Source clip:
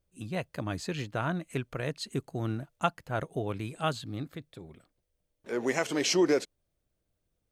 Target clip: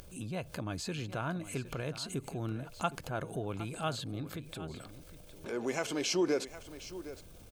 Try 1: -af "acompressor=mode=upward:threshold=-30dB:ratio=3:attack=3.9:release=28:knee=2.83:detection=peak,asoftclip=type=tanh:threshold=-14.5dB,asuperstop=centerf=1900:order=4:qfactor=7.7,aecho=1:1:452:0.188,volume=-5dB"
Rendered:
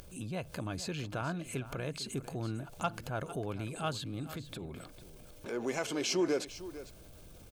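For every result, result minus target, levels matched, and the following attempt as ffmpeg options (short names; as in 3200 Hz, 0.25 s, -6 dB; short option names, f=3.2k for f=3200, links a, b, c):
soft clip: distortion +16 dB; echo 0.31 s early
-af "acompressor=mode=upward:threshold=-30dB:ratio=3:attack=3.9:release=28:knee=2.83:detection=peak,asoftclip=type=tanh:threshold=-6dB,asuperstop=centerf=1900:order=4:qfactor=7.7,aecho=1:1:452:0.188,volume=-5dB"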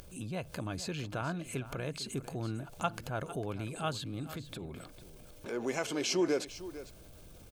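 echo 0.31 s early
-af "acompressor=mode=upward:threshold=-30dB:ratio=3:attack=3.9:release=28:knee=2.83:detection=peak,asoftclip=type=tanh:threshold=-6dB,asuperstop=centerf=1900:order=4:qfactor=7.7,aecho=1:1:762:0.188,volume=-5dB"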